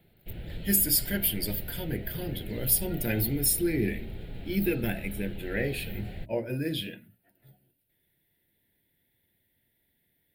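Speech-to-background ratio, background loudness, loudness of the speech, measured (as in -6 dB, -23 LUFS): 13.5 dB, -42.0 LUFS, -28.5 LUFS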